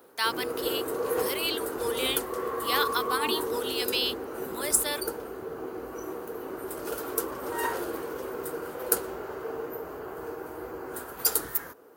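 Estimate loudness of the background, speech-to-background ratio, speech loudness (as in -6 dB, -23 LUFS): -32.5 LUFS, 2.5 dB, -30.0 LUFS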